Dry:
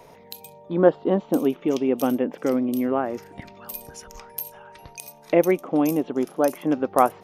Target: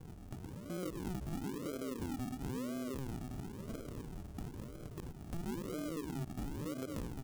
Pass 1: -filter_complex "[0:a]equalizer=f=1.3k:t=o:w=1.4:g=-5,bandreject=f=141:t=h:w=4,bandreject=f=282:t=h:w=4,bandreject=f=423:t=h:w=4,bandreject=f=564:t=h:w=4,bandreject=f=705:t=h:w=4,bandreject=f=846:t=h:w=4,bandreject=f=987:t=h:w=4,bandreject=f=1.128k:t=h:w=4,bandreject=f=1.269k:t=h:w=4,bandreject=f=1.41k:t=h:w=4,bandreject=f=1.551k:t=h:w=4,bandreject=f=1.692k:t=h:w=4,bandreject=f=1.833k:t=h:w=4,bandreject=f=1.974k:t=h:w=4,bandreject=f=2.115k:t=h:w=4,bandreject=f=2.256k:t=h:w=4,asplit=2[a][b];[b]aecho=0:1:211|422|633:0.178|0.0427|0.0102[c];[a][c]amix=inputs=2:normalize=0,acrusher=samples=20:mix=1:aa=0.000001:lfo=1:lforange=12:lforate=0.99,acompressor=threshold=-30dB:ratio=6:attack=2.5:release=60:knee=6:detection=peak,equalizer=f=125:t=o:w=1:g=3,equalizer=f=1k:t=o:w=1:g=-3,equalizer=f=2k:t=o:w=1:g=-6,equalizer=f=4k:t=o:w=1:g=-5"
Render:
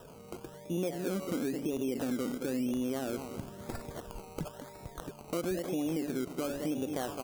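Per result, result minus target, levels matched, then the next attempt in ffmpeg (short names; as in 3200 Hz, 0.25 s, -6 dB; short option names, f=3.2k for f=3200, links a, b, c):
decimation with a swept rate: distortion -22 dB; compressor: peak gain reduction -8 dB
-filter_complex "[0:a]equalizer=f=1.3k:t=o:w=1.4:g=-5,bandreject=f=141:t=h:w=4,bandreject=f=282:t=h:w=4,bandreject=f=423:t=h:w=4,bandreject=f=564:t=h:w=4,bandreject=f=705:t=h:w=4,bandreject=f=846:t=h:w=4,bandreject=f=987:t=h:w=4,bandreject=f=1.128k:t=h:w=4,bandreject=f=1.269k:t=h:w=4,bandreject=f=1.41k:t=h:w=4,bandreject=f=1.551k:t=h:w=4,bandreject=f=1.692k:t=h:w=4,bandreject=f=1.833k:t=h:w=4,bandreject=f=1.974k:t=h:w=4,bandreject=f=2.115k:t=h:w=4,bandreject=f=2.256k:t=h:w=4,asplit=2[a][b];[b]aecho=0:1:211|422|633:0.178|0.0427|0.0102[c];[a][c]amix=inputs=2:normalize=0,acrusher=samples=68:mix=1:aa=0.000001:lfo=1:lforange=40.8:lforate=0.99,acompressor=threshold=-30dB:ratio=6:attack=2.5:release=60:knee=6:detection=peak,equalizer=f=125:t=o:w=1:g=3,equalizer=f=1k:t=o:w=1:g=-3,equalizer=f=2k:t=o:w=1:g=-6,equalizer=f=4k:t=o:w=1:g=-5"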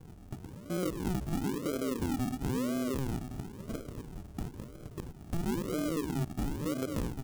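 compressor: peak gain reduction -8 dB
-filter_complex "[0:a]equalizer=f=1.3k:t=o:w=1.4:g=-5,bandreject=f=141:t=h:w=4,bandreject=f=282:t=h:w=4,bandreject=f=423:t=h:w=4,bandreject=f=564:t=h:w=4,bandreject=f=705:t=h:w=4,bandreject=f=846:t=h:w=4,bandreject=f=987:t=h:w=4,bandreject=f=1.128k:t=h:w=4,bandreject=f=1.269k:t=h:w=4,bandreject=f=1.41k:t=h:w=4,bandreject=f=1.551k:t=h:w=4,bandreject=f=1.692k:t=h:w=4,bandreject=f=1.833k:t=h:w=4,bandreject=f=1.974k:t=h:w=4,bandreject=f=2.115k:t=h:w=4,bandreject=f=2.256k:t=h:w=4,asplit=2[a][b];[b]aecho=0:1:211|422|633:0.178|0.0427|0.0102[c];[a][c]amix=inputs=2:normalize=0,acrusher=samples=68:mix=1:aa=0.000001:lfo=1:lforange=40.8:lforate=0.99,acompressor=threshold=-39.5dB:ratio=6:attack=2.5:release=60:knee=6:detection=peak,equalizer=f=125:t=o:w=1:g=3,equalizer=f=1k:t=o:w=1:g=-3,equalizer=f=2k:t=o:w=1:g=-6,equalizer=f=4k:t=o:w=1:g=-5"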